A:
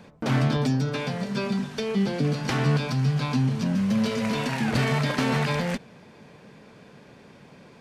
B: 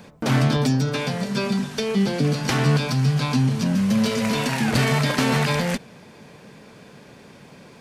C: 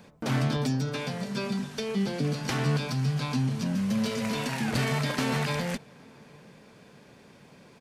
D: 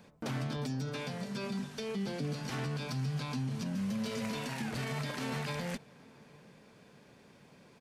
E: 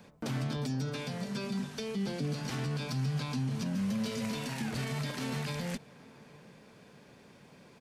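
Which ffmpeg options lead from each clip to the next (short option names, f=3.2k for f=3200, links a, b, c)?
-af "highshelf=f=6.2k:g=9,volume=3.5dB"
-filter_complex "[0:a]asplit=2[a][b];[b]adelay=816.3,volume=-27dB,highshelf=f=4k:g=-18.4[c];[a][c]amix=inputs=2:normalize=0,volume=-7.5dB"
-af "alimiter=limit=-22.5dB:level=0:latency=1:release=68,volume=-5.5dB"
-filter_complex "[0:a]acrossover=split=360|3000[a][b][c];[b]acompressor=threshold=-43dB:ratio=6[d];[a][d][c]amix=inputs=3:normalize=0,volume=2.5dB"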